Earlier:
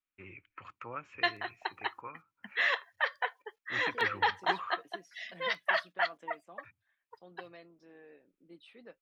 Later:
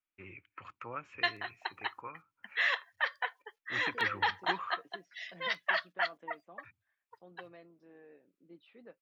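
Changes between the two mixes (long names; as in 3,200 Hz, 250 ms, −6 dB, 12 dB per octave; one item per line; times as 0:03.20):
second voice: add head-to-tape spacing loss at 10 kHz 23 dB
background: add high-pass filter 830 Hz 6 dB per octave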